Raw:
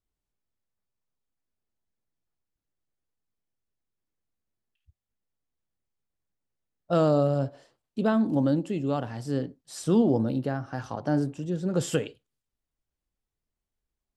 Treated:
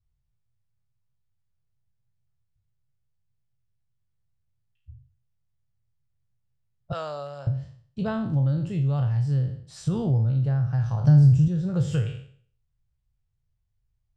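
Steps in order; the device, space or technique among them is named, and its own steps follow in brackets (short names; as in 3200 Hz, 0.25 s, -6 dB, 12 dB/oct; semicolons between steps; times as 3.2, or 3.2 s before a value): spectral trails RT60 0.51 s; 6.92–7.47 HPF 780 Hz 12 dB/oct; jukebox (LPF 6500 Hz 12 dB/oct; resonant low shelf 180 Hz +13.5 dB, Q 3; compressor 3:1, threshold -18 dBFS, peak gain reduction 7.5 dB); 11.04–11.48 tone controls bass +10 dB, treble +10 dB; gain -3.5 dB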